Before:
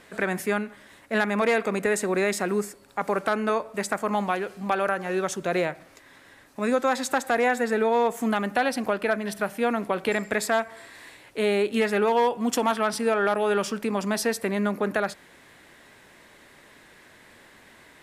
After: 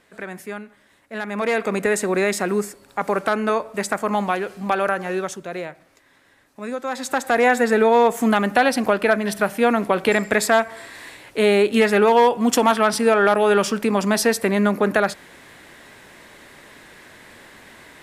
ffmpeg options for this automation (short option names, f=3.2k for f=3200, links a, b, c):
-af "volume=16dB,afade=t=in:st=1.16:d=0.58:silence=0.298538,afade=t=out:st=5.02:d=0.44:silence=0.354813,afade=t=in:st=6.84:d=0.7:silence=0.251189"